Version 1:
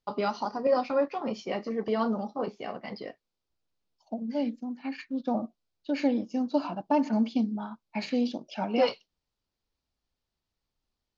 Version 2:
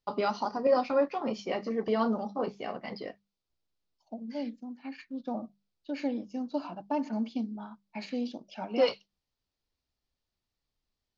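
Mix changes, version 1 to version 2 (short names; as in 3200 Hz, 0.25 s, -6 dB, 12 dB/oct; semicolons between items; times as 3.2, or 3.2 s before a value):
second voice -6.0 dB; master: add notches 50/100/150/200 Hz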